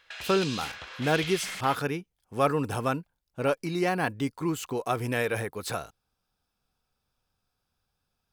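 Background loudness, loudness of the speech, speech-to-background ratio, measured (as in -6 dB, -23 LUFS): -36.0 LUFS, -29.0 LUFS, 7.0 dB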